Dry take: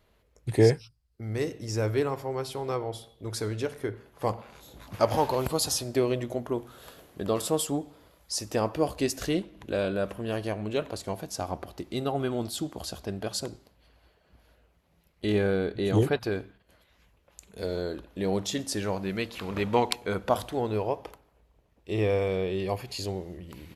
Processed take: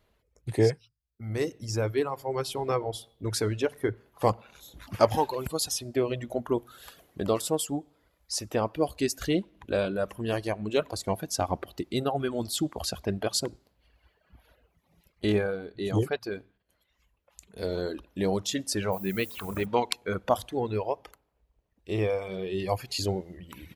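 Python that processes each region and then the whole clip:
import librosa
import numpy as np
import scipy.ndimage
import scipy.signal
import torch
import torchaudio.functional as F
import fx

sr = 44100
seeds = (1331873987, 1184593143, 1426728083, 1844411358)

y = fx.air_absorb(x, sr, metres=160.0, at=(18.91, 19.65), fade=0.02)
y = fx.dmg_noise_colour(y, sr, seeds[0], colour='violet', level_db=-45.0, at=(18.91, 19.65), fade=0.02)
y = fx.rider(y, sr, range_db=4, speed_s=0.5)
y = fx.dereverb_blind(y, sr, rt60_s=1.6)
y = y * librosa.db_to_amplitude(1.5)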